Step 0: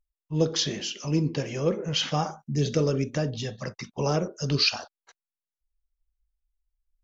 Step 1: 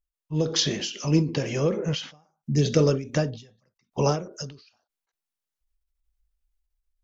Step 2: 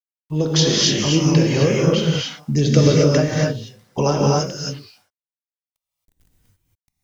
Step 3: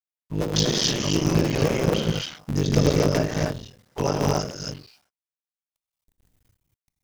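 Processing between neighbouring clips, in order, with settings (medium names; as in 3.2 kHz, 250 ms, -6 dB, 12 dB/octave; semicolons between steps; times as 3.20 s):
level rider gain up to 4.5 dB; endings held to a fixed fall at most 120 dB/s
in parallel at +0.5 dB: compression, threshold -29 dBFS, peak gain reduction 13.5 dB; on the sum: bit crusher 10-bit; gated-style reverb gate 300 ms rising, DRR -3 dB; trim +1 dB
cycle switcher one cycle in 3, muted; trim -4 dB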